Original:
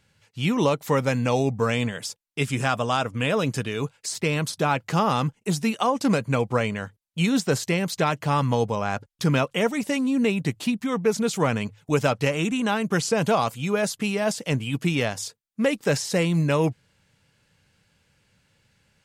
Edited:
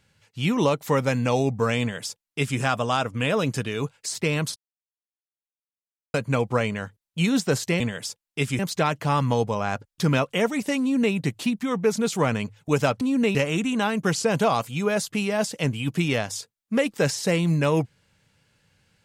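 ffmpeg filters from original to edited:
ffmpeg -i in.wav -filter_complex "[0:a]asplit=7[link_01][link_02][link_03][link_04][link_05][link_06][link_07];[link_01]atrim=end=4.56,asetpts=PTS-STARTPTS,afade=type=out:start_time=4.556:duration=0.004:curve=hsin[link_08];[link_02]atrim=start=4.56:end=6.14,asetpts=PTS-STARTPTS,volume=0[link_09];[link_03]atrim=start=6.14:end=7.802,asetpts=PTS-STARTPTS,afade=type=in:duration=0.004:curve=hsin[link_10];[link_04]atrim=start=1.798:end=2.592[link_11];[link_05]atrim=start=7.798:end=12.222[link_12];[link_06]atrim=start=10.018:end=10.362[link_13];[link_07]atrim=start=12.218[link_14];[link_08][link_09][link_10]concat=n=3:v=0:a=1[link_15];[link_15][link_11]acrossfade=duration=0.004:curve1=hsin:curve2=hsin[link_16];[link_16][link_12]acrossfade=duration=0.004:curve1=hsin:curve2=hsin[link_17];[link_17][link_13]acrossfade=duration=0.004:curve1=hsin:curve2=hsin[link_18];[link_18][link_14]acrossfade=duration=0.004:curve1=hsin:curve2=hsin" out.wav

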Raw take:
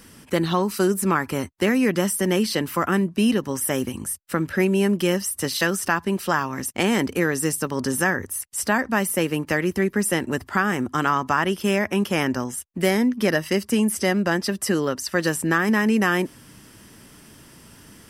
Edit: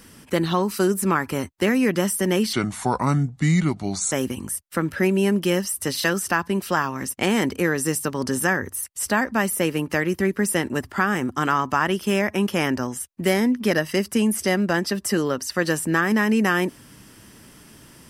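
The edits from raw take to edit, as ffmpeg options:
ffmpeg -i in.wav -filter_complex "[0:a]asplit=3[link_01][link_02][link_03];[link_01]atrim=end=2.534[link_04];[link_02]atrim=start=2.53:end=3.69,asetpts=PTS-STARTPTS,asetrate=32193,aresample=44100[link_05];[link_03]atrim=start=3.686[link_06];[link_04][link_05]acrossfade=duration=0.004:curve1=hsin:curve2=hsin[link_07];[link_07][link_06]acrossfade=duration=0.004:curve1=hsin:curve2=hsin" out.wav

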